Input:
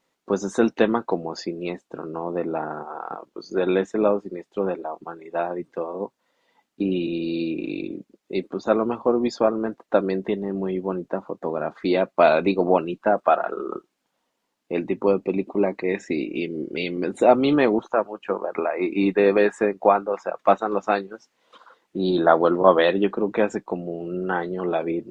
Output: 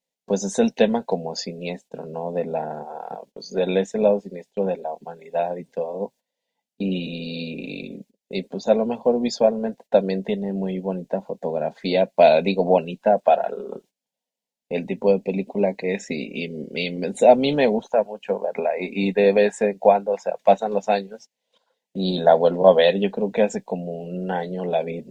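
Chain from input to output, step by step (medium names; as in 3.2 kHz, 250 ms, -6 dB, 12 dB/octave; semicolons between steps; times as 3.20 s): gate -45 dBFS, range -16 dB; treble shelf 4.2 kHz +6 dB; static phaser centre 330 Hz, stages 6; trim +3.5 dB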